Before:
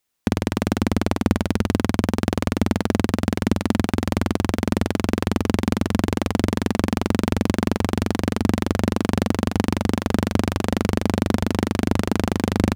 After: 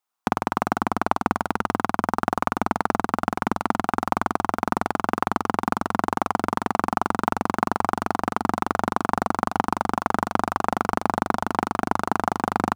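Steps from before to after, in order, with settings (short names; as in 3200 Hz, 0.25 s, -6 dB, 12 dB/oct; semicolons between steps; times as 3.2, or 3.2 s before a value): HPF 310 Hz 6 dB/oct; band shelf 1000 Hz +11.5 dB 1.2 oct; transient shaper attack +8 dB, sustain +3 dB; gain -9.5 dB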